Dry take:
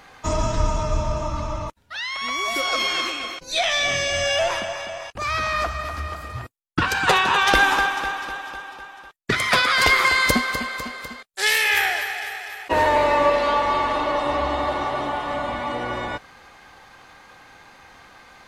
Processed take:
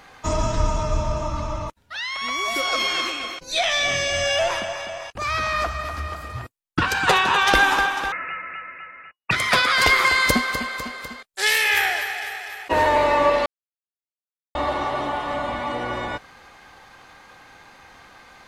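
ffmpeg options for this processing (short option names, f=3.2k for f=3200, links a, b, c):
-filter_complex "[0:a]asettb=1/sr,asplit=3[a][b][c];[a]atrim=end=8.124[d];[b]atrim=start=8.12:end=9.31,asetpts=PTS-STARTPTS,afade=t=in:d=0.004:c=qsin,afade=t=out:st=1.186:d=0.004:c=qsin,lowpass=f=2.5k:t=q:w=0.5098,lowpass=f=2.5k:t=q:w=0.6013,lowpass=f=2.5k:t=q:w=0.9,lowpass=f=2.5k:t=q:w=2.563,afreqshift=-2900[e];[c]atrim=start=9.306[f];[d][e]acrossfade=d=0.004:c1=hsin:c2=qsin[g];[g][f]acrossfade=d=0.004:c1=qsin:c2=hsin,asplit=3[h][i][j];[h]atrim=end=13.46,asetpts=PTS-STARTPTS,afade=t=out:st=13.456:d=0.004:c=hsin[k];[i]atrim=start=13.46:end=14.55,asetpts=PTS-STARTPTS,volume=0[l];[j]atrim=start=14.55,asetpts=PTS-STARTPTS,afade=t=in:d=0.004:c=hsin[m];[k][l][m]concat=n=3:v=0:a=1"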